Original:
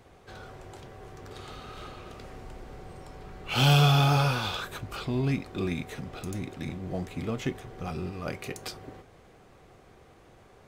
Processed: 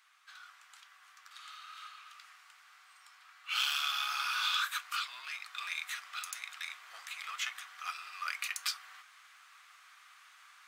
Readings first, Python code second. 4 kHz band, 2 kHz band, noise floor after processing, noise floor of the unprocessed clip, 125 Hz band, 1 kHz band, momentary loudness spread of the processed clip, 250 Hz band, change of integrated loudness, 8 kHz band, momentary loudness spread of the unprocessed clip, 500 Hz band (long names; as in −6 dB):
−2.0 dB, −1.0 dB, −61 dBFS, −56 dBFS, below −40 dB, −7.0 dB, 23 LU, below −40 dB, −7.5 dB, 0.0 dB, 24 LU, below −35 dB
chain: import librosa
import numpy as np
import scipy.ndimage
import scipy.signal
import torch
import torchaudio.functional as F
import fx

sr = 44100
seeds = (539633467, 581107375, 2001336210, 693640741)

y = fx.octave_divider(x, sr, octaves=1, level_db=2.0)
y = fx.rider(y, sr, range_db=4, speed_s=0.5)
y = 10.0 ** (-18.0 / 20.0) * np.tanh(y / 10.0 ** (-18.0 / 20.0))
y = scipy.signal.sosfilt(scipy.signal.cheby1(4, 1.0, 1200.0, 'highpass', fs=sr, output='sos'), y)
y = y * librosa.db_to_amplitude(2.0)